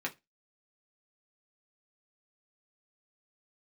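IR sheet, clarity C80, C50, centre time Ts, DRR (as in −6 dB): 29.5 dB, 20.5 dB, 9 ms, −2.0 dB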